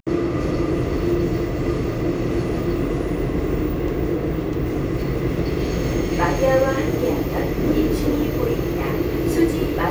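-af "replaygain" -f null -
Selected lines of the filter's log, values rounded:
track_gain = +3.2 dB
track_peak = 0.394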